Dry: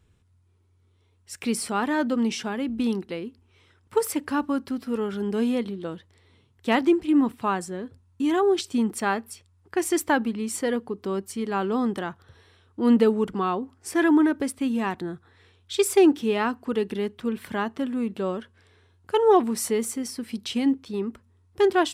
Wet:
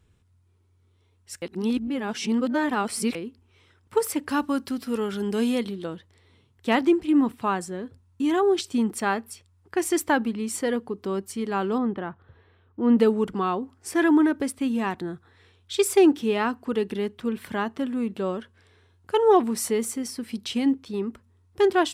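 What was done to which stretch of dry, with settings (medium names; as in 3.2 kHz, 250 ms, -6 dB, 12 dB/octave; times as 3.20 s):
1.42–3.15 s: reverse
4.29–5.86 s: treble shelf 2.8 kHz +8.5 dB
11.78–12.98 s: distance through air 460 m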